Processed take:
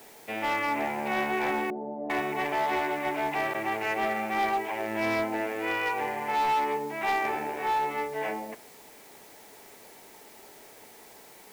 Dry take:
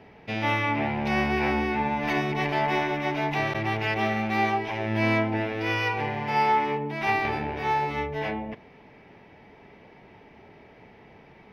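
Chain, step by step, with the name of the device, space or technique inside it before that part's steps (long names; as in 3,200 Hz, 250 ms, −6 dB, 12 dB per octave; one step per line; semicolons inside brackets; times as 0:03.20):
aircraft radio (band-pass filter 340–2,300 Hz; hard clipping −22.5 dBFS, distortion −14 dB; white noise bed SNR 23 dB)
0:01.70–0:02.10: Chebyshev band-pass filter 160–650 Hz, order 3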